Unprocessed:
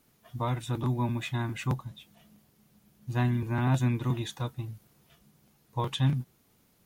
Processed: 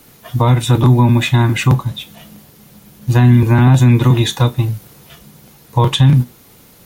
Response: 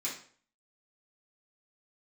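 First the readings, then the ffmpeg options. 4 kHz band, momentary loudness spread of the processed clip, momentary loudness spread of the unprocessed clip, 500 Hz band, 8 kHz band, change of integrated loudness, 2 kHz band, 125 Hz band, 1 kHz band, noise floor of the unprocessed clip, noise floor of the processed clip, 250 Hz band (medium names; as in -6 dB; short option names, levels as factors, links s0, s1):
+18.0 dB, 15 LU, 15 LU, +17.0 dB, +18.5 dB, +18.0 dB, +16.0 dB, +18.5 dB, +15.5 dB, -67 dBFS, -45 dBFS, +17.5 dB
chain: -filter_complex "[0:a]acrossover=split=280[s0][s1];[s1]acompressor=threshold=0.01:ratio=2[s2];[s0][s2]amix=inputs=2:normalize=0,asplit=2[s3][s4];[1:a]atrim=start_sample=2205,asetrate=74970,aresample=44100[s5];[s4][s5]afir=irnorm=-1:irlink=0,volume=0.376[s6];[s3][s6]amix=inputs=2:normalize=0,alimiter=level_in=12.6:limit=0.891:release=50:level=0:latency=1,volume=0.891"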